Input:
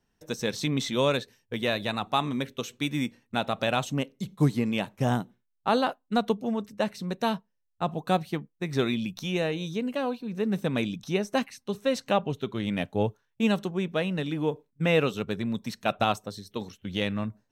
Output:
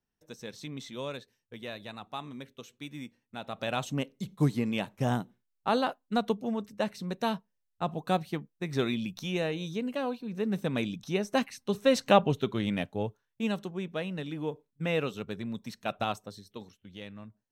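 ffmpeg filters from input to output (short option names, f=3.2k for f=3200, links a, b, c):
-af "volume=4dB,afade=t=in:st=3.38:d=0.55:silence=0.316228,afade=t=in:st=11.13:d=1.07:silence=0.446684,afade=t=out:st=12.2:d=0.8:silence=0.298538,afade=t=out:st=16.31:d=0.61:silence=0.354813"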